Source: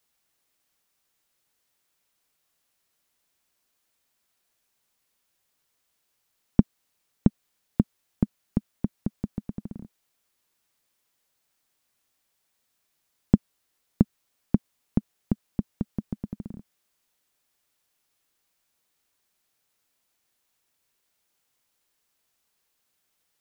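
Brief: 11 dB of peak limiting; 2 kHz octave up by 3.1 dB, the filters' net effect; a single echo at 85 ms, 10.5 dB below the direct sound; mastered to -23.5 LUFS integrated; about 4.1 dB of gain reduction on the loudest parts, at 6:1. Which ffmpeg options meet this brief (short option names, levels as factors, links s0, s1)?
-af "equalizer=f=2000:t=o:g=4,acompressor=threshold=0.126:ratio=6,alimiter=limit=0.158:level=0:latency=1,aecho=1:1:85:0.299,volume=6.31"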